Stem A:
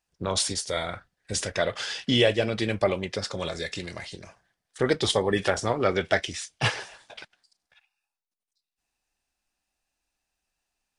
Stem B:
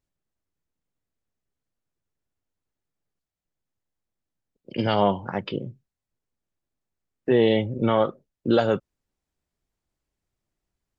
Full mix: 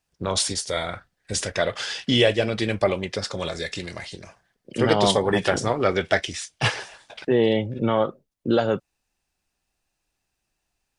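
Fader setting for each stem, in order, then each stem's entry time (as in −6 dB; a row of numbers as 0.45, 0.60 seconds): +2.5, −0.5 decibels; 0.00, 0.00 seconds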